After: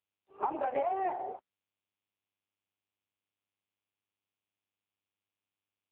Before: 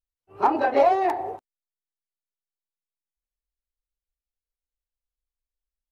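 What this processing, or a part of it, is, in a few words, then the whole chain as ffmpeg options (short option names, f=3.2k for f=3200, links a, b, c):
voicemail: -af "highpass=350,lowpass=3.2k,acompressor=threshold=-21dB:ratio=8,volume=-5.5dB" -ar 8000 -c:a libopencore_amrnb -b:a 5900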